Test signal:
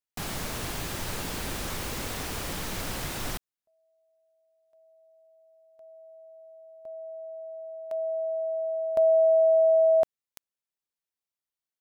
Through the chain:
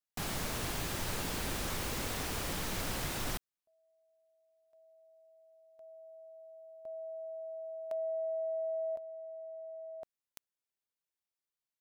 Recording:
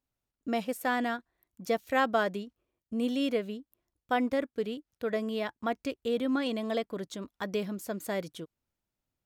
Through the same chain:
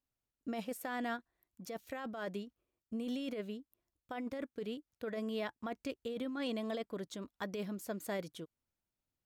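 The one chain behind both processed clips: compressor with a negative ratio -31 dBFS, ratio -1; trim -7 dB

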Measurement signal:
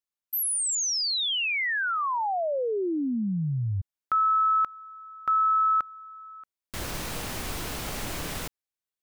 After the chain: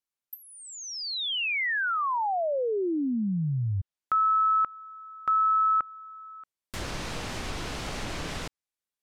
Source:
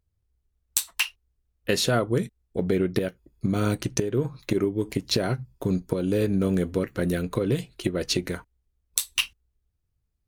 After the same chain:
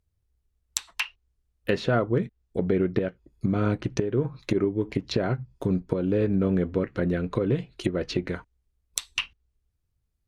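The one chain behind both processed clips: low-pass that closes with the level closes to 2.2 kHz, closed at -23 dBFS

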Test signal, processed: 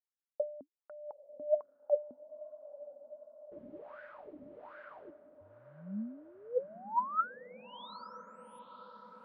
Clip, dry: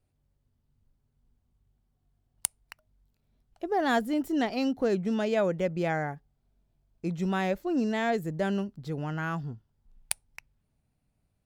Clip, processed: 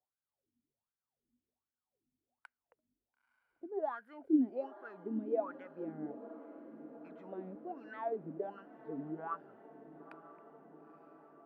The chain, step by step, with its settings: level-controlled noise filter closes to 1.1 kHz, open at -28.5 dBFS; peaking EQ 6.6 kHz -10.5 dB 0.99 oct; peak limiter -22 dBFS; wah-wah 1.3 Hz 250–1600 Hz, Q 11; on a send: echo that smears into a reverb 934 ms, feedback 70%, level -15 dB; on the sum: trim +5 dB

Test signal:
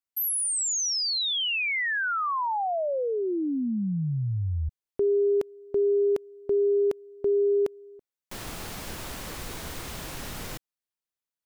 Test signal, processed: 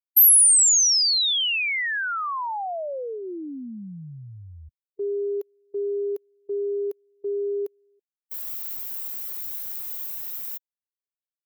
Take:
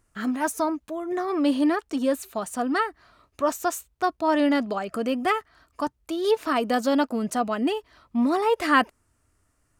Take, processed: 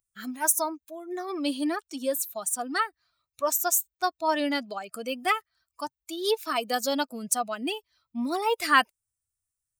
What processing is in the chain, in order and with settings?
expander on every frequency bin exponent 1.5; RIAA curve recording

